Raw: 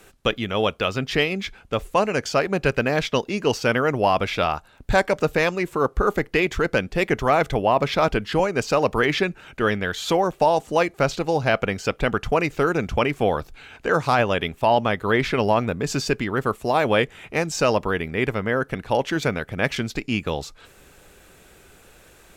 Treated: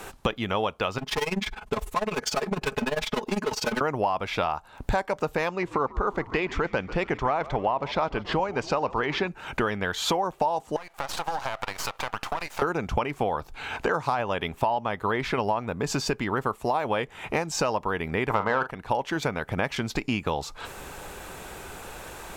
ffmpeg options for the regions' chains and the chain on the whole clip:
-filter_complex "[0:a]asettb=1/sr,asplit=3[s0][s1][s2];[s0]atrim=end=0.984[s3];[s1]atrim=start=0.98:end=3.81,asetpts=PTS-STARTPTS,afade=t=in:d=0.004:c=qsin,afade=t=out:st=2.826:d=0.004:c=qsin,volume=20,asoftclip=hard,volume=0.0501,aecho=1:1:4.7:0.63,atrim=end_sample=124803,tremolo=f=20:d=0.89[s4];[s2]atrim=start=3.806[s5];[s3][s4]acrossfade=d=0.004:c1=hsin:c2=qsin[s6];[s6][s5]acrossfade=d=0.004:c1=qsin:c2=hsin,asettb=1/sr,asplit=3[s7][s8][s9];[s7]atrim=end=5.484[s10];[s8]atrim=start=5.48:end=9.28,asetpts=PTS-STARTPTS,afade=t=in:d=0.004:c=qsin,afade=t=out:st=3.796:d=0.004:c=qsin,lowpass=5500,asplit=6[s11][s12][s13][s14][s15][s16];[s12]adelay=142,afreqshift=-76,volume=0.106[s17];[s13]adelay=284,afreqshift=-152,volume=0.0596[s18];[s14]adelay=426,afreqshift=-228,volume=0.0331[s19];[s15]adelay=568,afreqshift=-304,volume=0.0186[s20];[s16]adelay=710,afreqshift=-380,volume=0.0105[s21];[s11][s17][s18][s19][s20][s21]amix=inputs=6:normalize=0,atrim=end_sample=167580[s22];[s9]atrim=start=9.276[s23];[s10][s22]acrossfade=d=0.004:c1=hsin:c2=qsin[s24];[s24][s23]acrossfade=d=0.004:c1=qsin:c2=hsin,asettb=1/sr,asplit=3[s25][s26][s27];[s25]atrim=end=10.764[s28];[s26]atrim=start=10.76:end=12.62,asetpts=PTS-STARTPTS,afade=t=in:d=0.004:c=qsin,afade=t=out:st=1.856:d=0.004:c=qsin,highpass=f=670:w=0.5412,highpass=f=670:w=1.3066,acompressor=threshold=0.0282:ratio=10:attack=3.2:release=140:knee=1:detection=peak,aeval=exprs='max(val(0),0)':c=same[s29];[s27]atrim=start=12.616[s30];[s28][s29]acrossfade=d=0.004:c1=hsin:c2=qsin[s31];[s31][s30]acrossfade=d=0.004:c1=qsin:c2=hsin,asettb=1/sr,asplit=3[s32][s33][s34];[s32]atrim=end=18.304[s35];[s33]atrim=start=18.3:end=18.71,asetpts=PTS-STARTPTS,afade=t=in:d=0.004:c=qsin,afade=t=out:st=0.406:d=0.004:c=qsin,equalizer=f=970:w=0.83:g=14.5,acontrast=69,asplit=2[s36][s37];[s37]adelay=39,volume=0.266[s38];[s36][s38]amix=inputs=2:normalize=0,atrim=end_sample=18081[s39];[s34]atrim=start=18.706[s40];[s35][s39]acrossfade=d=0.004:c1=hsin:c2=qsin[s41];[s41][s40]acrossfade=d=0.004:c1=qsin:c2=hsin,equalizer=f=920:w=1.8:g=9.5,acompressor=threshold=0.0224:ratio=6,volume=2.66"

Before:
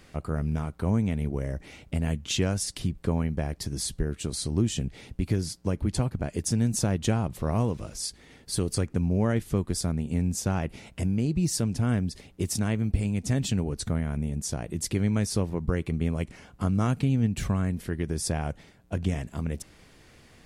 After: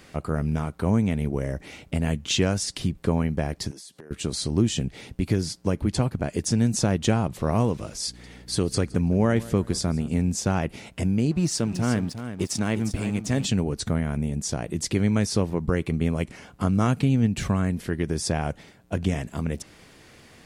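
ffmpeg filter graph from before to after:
-filter_complex "[0:a]asettb=1/sr,asplit=3[s0][s1][s2];[s0]atrim=end=3.714[s3];[s1]atrim=start=3.71:end=4.11,asetpts=PTS-STARTPTS,afade=t=in:d=0.004:c=qsin,afade=t=out:st=0.396:d=0.004:c=qsin,highpass=300,acompressor=threshold=0.00631:ratio=20:attack=3.2:release=140:knee=1:detection=peak[s4];[s2]atrim=start=4.106[s5];[s3][s4]acrossfade=d=0.004:c1=hsin:c2=qsin[s6];[s6][s5]acrossfade=d=0.004:c1=qsin:c2=hsin,asettb=1/sr,asplit=3[s7][s8][s9];[s7]atrim=end=8.074[s10];[s8]atrim=start=8.07:end=10.3,asetpts=PTS-STARTPTS,afade=t=in:d=0.004:c=qsin,afade=t=out:st=2.226:d=0.004:c=qsin,aeval=exprs='val(0)+0.00447*(sin(2*PI*60*n/s)+sin(2*PI*2*60*n/s)/2+sin(2*PI*3*60*n/s)/3+sin(2*PI*4*60*n/s)/4+sin(2*PI*5*60*n/s)/5)':c=same,asplit=2[s11][s12];[s12]adelay=165,lowpass=f=3700:p=1,volume=0.119,asplit=2[s13][s14];[s14]adelay=165,lowpass=f=3700:p=1,volume=0.35,asplit=2[s15][s16];[s16]adelay=165,lowpass=f=3700:p=1,volume=0.35[s17];[s11][s13][s15][s17]amix=inputs=4:normalize=0,atrim=end_sample=98343[s18];[s9]atrim=start=10.296[s19];[s10][s18]acrossfade=d=0.004:c1=hsin:c2=qsin[s20];[s20][s19]acrossfade=d=0.004:c1=qsin:c2=hsin,asettb=1/sr,asplit=3[s21][s22][s23];[s21]atrim=end=11.314[s24];[s22]atrim=start=11.31:end=13.44,asetpts=PTS-STARTPTS,afade=t=in:d=0.004:c=qsin,afade=t=out:st=2.126:d=0.004:c=qsin,equalizer=f=61:w=0.88:g=-6.5,aeval=exprs='sgn(val(0))*max(abs(val(0))-0.00447,0)':c=same,aecho=1:1:355:0.299,atrim=end_sample=93933[s25];[s23]atrim=start=13.436[s26];[s24][s25]acrossfade=d=0.004:c1=hsin:c2=qsin[s27];[s27][s26]acrossfade=d=0.004:c1=qsin:c2=hsin,lowshelf=f=71:g=-10.5,acrossover=split=8600[s28][s29];[s29]acompressor=threshold=0.002:ratio=4:attack=1:release=60[s30];[s28][s30]amix=inputs=2:normalize=0,volume=1.78"

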